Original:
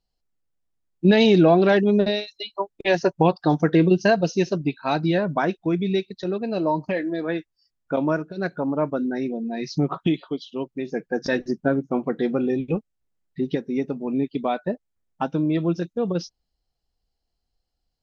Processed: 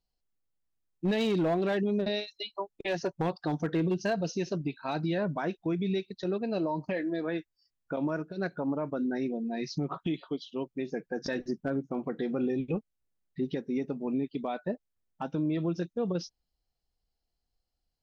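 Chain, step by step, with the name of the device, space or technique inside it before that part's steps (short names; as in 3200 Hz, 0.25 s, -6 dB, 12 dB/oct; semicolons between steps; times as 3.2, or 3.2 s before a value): clipper into limiter (hard clip -11 dBFS, distortion -21 dB; limiter -17.5 dBFS, peak gain reduction 6.5 dB); gain -5 dB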